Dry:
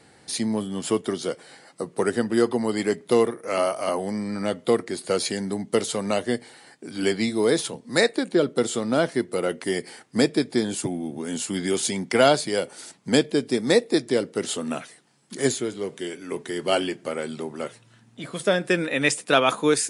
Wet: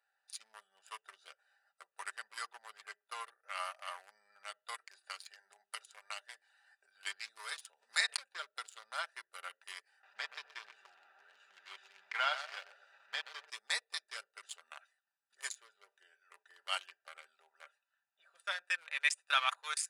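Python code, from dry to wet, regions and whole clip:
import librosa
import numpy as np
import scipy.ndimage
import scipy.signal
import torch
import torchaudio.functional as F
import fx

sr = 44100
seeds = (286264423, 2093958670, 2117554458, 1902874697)

y = fx.chain(x, sr, fx.highpass(hz=81.0, slope=24),
    fx.high_shelf(hz=2300.0, db=-5.0), at=(2.53, 3.26))
y = fx.chain(y, sr, fx.low_shelf(hz=410.0, db=-10.0),
    fx.hum_notches(base_hz=50, count=8),
    fx.band_squash(depth_pct=70), at=(4.74, 6.86))
y = fx.chain(y, sr, fx.cheby1_highpass(hz=220.0, order=3),
    fx.pre_swell(db_per_s=100.0), at=(7.38, 8.3))
y = fx.chain(y, sr, fx.delta_mod(bps=64000, step_db=-28.0),
    fx.lowpass(hz=3300.0, slope=12),
    fx.echo_feedback(ms=125, feedback_pct=48, wet_db=-8.5), at=(10.03, 13.5))
y = fx.wiener(y, sr, points=41)
y = scipy.signal.sosfilt(scipy.signal.cheby2(4, 60, 310.0, 'highpass', fs=sr, output='sos'), y)
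y = y + 0.36 * np.pad(y, (int(5.1 * sr / 1000.0), 0))[:len(y)]
y = y * 10.0 ** (-7.5 / 20.0)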